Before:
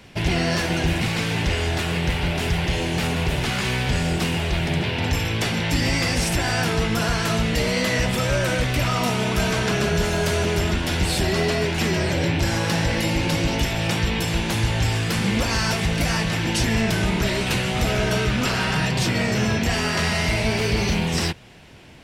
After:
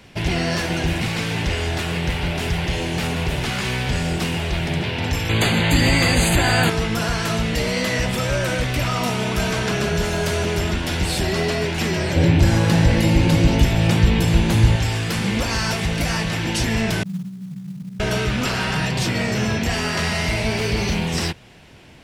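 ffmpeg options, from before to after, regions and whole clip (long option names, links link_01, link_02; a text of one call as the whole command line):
ffmpeg -i in.wav -filter_complex "[0:a]asettb=1/sr,asplit=3[link_01][link_02][link_03];[link_01]atrim=end=5.294[link_04];[link_02]atrim=start=5.29:end=6.7,asetpts=PTS-STARTPTS,afade=type=in:duration=0.004:curve=qsin,afade=type=out:start_time=1.406:duration=0.004:curve=qsin,asuperstop=centerf=5500:order=20:qfactor=4.2,acontrast=37[link_05];[link_03]atrim=start=6.696[link_06];[link_04][link_05]acrossfade=duration=0.004:curve1=hsin:curve2=qsin[link_07];[link_07][link_06]acrossfade=duration=0.004:curve1=qsin:curve2=hsin,asettb=1/sr,asplit=3[link_08][link_09][link_10];[link_08]atrim=end=12.164[link_11];[link_09]atrim=start=12.16:end=14.76,asetpts=PTS-STARTPTS,afade=type=in:duration=0.004:curve=qsin,afade=type=out:start_time=2.596:duration=0.004:curve=qsin,lowshelf=frequency=390:gain=9,bandreject=frequency=5500:width=20[link_12];[link_10]atrim=start=14.756[link_13];[link_11][link_12]acrossfade=duration=0.004:curve1=hsin:curve2=qsin[link_14];[link_14][link_13]acrossfade=duration=0.004:curve1=qsin:curve2=hsin,asettb=1/sr,asplit=3[link_15][link_16][link_17];[link_15]atrim=end=17.034[link_18];[link_16]atrim=start=17.03:end=18,asetpts=PTS-STARTPTS,afade=type=in:duration=0.004:curve=qsin,afade=type=out:start_time=0.966:duration=0.004:curve=qsin,asuperpass=centerf=170:order=4:qfactor=4.2,acrusher=bits=6:mode=log:mix=0:aa=0.000001[link_19];[link_17]atrim=start=17.996[link_20];[link_18][link_19]acrossfade=duration=0.004:curve1=hsin:curve2=qsin[link_21];[link_21][link_20]acrossfade=duration=0.004:curve1=qsin:curve2=hsin" out.wav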